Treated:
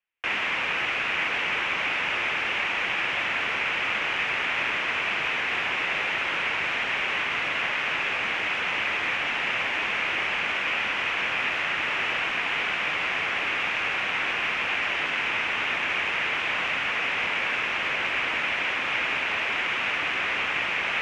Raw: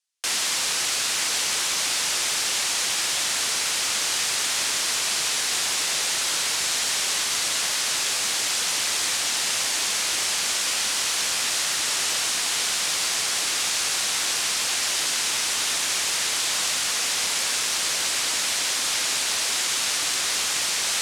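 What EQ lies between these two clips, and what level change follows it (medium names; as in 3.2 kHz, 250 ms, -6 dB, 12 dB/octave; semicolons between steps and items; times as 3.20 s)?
distance through air 240 m; resonant high shelf 3.3 kHz -9.5 dB, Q 3; +3.0 dB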